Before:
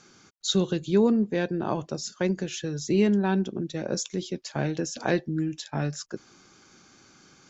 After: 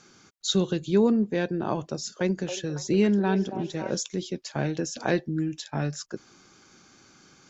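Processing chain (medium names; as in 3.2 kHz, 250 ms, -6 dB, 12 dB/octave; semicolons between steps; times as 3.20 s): 1.87–3.98 s: repeats whose band climbs or falls 277 ms, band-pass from 610 Hz, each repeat 0.7 oct, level -5 dB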